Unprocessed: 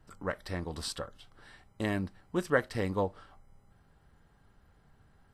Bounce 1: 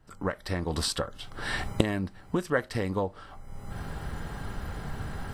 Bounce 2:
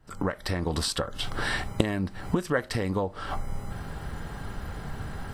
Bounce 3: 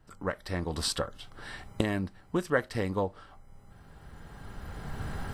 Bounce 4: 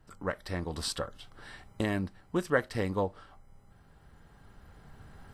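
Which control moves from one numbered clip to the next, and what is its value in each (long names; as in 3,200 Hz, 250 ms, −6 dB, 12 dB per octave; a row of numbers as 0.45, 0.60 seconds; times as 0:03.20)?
camcorder AGC, rising by: 35, 91, 13, 5.5 dB per second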